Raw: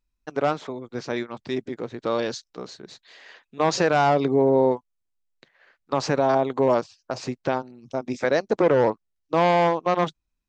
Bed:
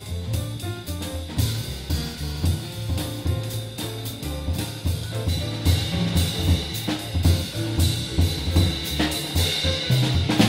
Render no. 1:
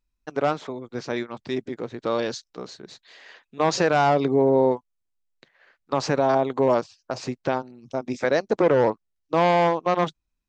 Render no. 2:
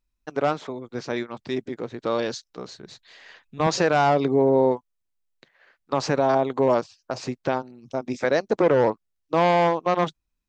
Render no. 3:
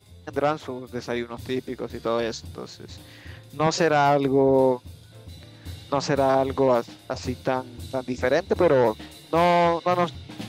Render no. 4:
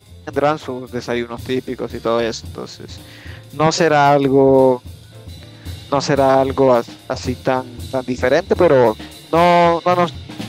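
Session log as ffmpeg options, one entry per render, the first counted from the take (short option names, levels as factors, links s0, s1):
-af anull
-filter_complex "[0:a]asettb=1/sr,asplit=3[s0][s1][s2];[s0]atrim=end=2.454[s3];[s1]atrim=start=2.45:end=3.67,asetpts=PTS-STARTPTS,afade=t=in:d=0.004:c=qsin,afade=t=out:st=1.216:d=0.004:c=qsin,asubboost=boost=11:cutoff=170[s4];[s2]atrim=start=3.666[s5];[s3][s4]acrossfade=d=0.004:c1=hsin:c2=qsin[s6];[s6][s5]acrossfade=d=0.004:c1=qsin:c2=hsin"
-filter_complex "[1:a]volume=0.119[s0];[0:a][s0]amix=inputs=2:normalize=0"
-af "volume=2.37,alimiter=limit=0.794:level=0:latency=1"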